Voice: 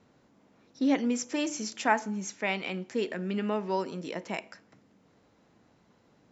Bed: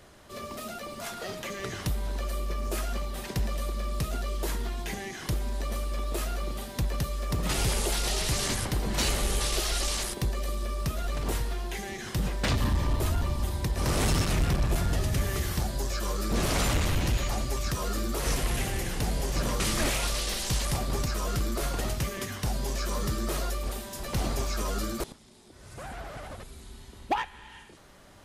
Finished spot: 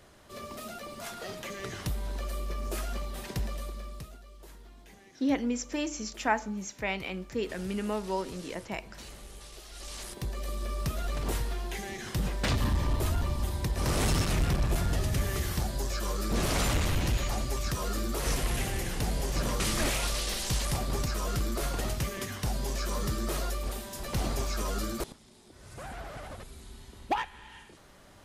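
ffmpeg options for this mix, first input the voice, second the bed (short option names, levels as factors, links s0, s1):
-filter_complex "[0:a]adelay=4400,volume=0.794[s0];[1:a]volume=5.62,afade=t=out:st=3.35:d=0.84:silence=0.149624,afade=t=in:st=9.7:d=1.06:silence=0.125893[s1];[s0][s1]amix=inputs=2:normalize=0"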